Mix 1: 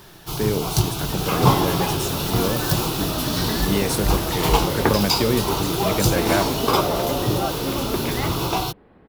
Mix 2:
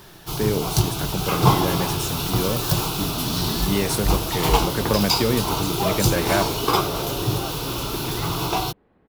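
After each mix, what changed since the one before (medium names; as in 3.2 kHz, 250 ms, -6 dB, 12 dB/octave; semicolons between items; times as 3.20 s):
second sound -9.0 dB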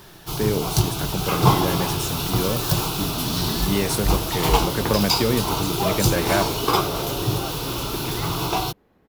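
second sound: remove boxcar filter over 7 samples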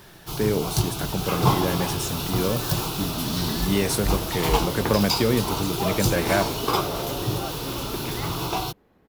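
first sound -3.5 dB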